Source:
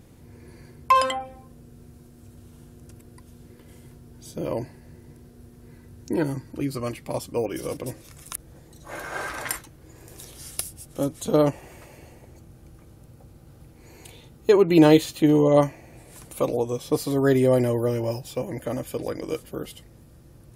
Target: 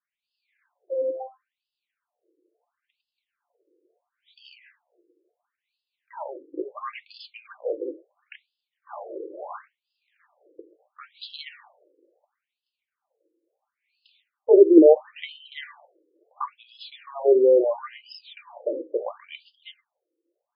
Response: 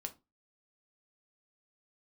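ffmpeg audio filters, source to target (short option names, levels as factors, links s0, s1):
-filter_complex "[0:a]agate=range=0.0224:threshold=0.0178:ratio=3:detection=peak,asplit=2[s0][s1];[1:a]atrim=start_sample=2205,asetrate=48510,aresample=44100[s2];[s1][s2]afir=irnorm=-1:irlink=0,volume=1.88[s3];[s0][s3]amix=inputs=2:normalize=0,afftfilt=real='re*between(b*sr/1024,380*pow(3700/380,0.5+0.5*sin(2*PI*0.73*pts/sr))/1.41,380*pow(3700/380,0.5+0.5*sin(2*PI*0.73*pts/sr))*1.41)':imag='im*between(b*sr/1024,380*pow(3700/380,0.5+0.5*sin(2*PI*0.73*pts/sr))/1.41,380*pow(3700/380,0.5+0.5*sin(2*PI*0.73*pts/sr))*1.41)':win_size=1024:overlap=0.75,volume=0.794"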